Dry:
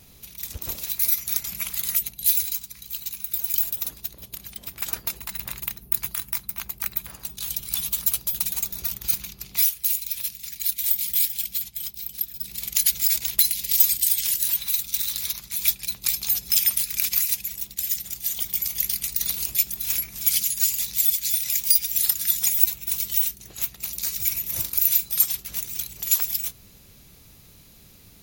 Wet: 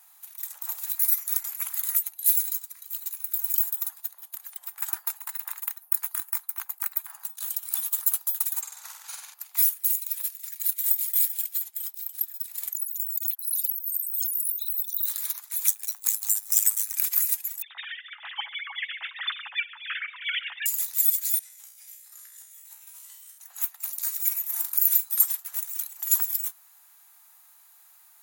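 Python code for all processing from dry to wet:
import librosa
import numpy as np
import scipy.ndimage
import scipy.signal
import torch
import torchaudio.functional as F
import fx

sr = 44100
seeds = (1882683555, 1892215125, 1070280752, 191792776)

y = fx.chain(x, sr, fx.lowpass(hz=7100.0, slope=12),
    fx.room_flutter(wall_m=8.1, rt60_s=0.7), at=(8.61, 9.34))
y = fx.chain(y, sr, fx.envelope_sharpen(power=3.0),
    fx.over_compress(threshold_db=-28.0, ratio=-1.0),
    fx.quant_companded(bits=8), at=(12.72, 15.06))
y = fx.chain(y, sr, fx.resample_bad(factor=2, down='none', up='zero_stuff'),
    fx.ring_mod(carrier_hz=53.0), at=(15.67, 16.95))
y = fx.chain(y, sr, fx.sine_speech(),
    fx.comb(ms=7.1, depth=0.33),
    fx.echo_feedback(ms=61, feedback_pct=32, wet_db=-19.0), at=(17.62, 20.66))
y = fx.chain(y, sr, fx.lowpass(hz=11000.0, slope=12),
    fx.over_compress(threshold_db=-36.0, ratio=-1.0),
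    fx.comb_fb(f0_hz=61.0, decay_s=0.79, harmonics='all', damping=0.0, mix_pct=90), at=(21.39, 23.38))
y = scipy.signal.sosfilt(scipy.signal.ellip(4, 1.0, 80, 810.0, 'highpass', fs=sr, output='sos'), y)
y = fx.band_shelf(y, sr, hz=3600.0, db=-10.5, octaves=1.7)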